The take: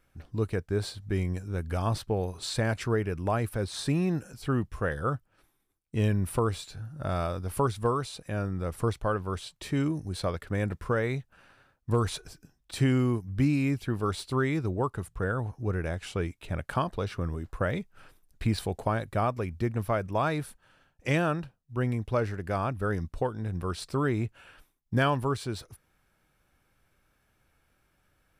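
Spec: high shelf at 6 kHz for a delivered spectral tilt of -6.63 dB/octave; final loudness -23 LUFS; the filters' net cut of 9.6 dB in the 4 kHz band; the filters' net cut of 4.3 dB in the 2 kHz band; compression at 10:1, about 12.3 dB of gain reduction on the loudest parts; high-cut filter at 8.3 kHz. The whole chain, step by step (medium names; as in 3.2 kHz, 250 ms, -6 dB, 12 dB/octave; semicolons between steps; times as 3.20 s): low-pass 8.3 kHz; peaking EQ 2 kHz -3.5 dB; peaking EQ 4 kHz -8 dB; treble shelf 6 kHz -7.5 dB; compression 10:1, threshold -33 dBFS; trim +16.5 dB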